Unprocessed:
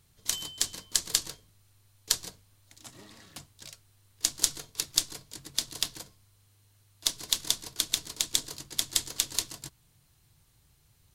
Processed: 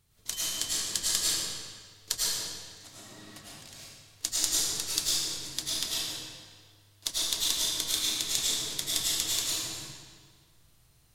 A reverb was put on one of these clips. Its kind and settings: algorithmic reverb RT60 1.7 s, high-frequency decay 0.9×, pre-delay 65 ms, DRR -7.5 dB; trim -5.5 dB

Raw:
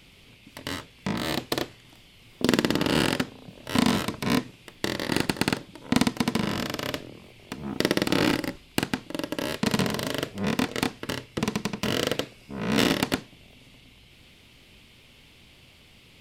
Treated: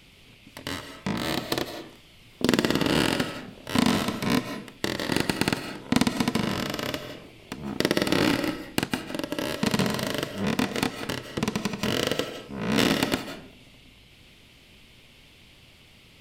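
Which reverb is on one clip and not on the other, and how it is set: algorithmic reverb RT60 0.53 s, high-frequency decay 0.6×, pre-delay 120 ms, DRR 8.5 dB

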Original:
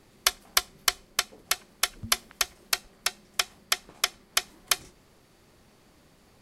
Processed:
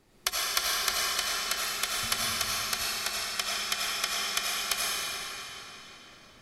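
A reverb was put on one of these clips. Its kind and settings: algorithmic reverb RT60 3.8 s, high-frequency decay 0.9×, pre-delay 45 ms, DRR -6.5 dB; trim -6.5 dB

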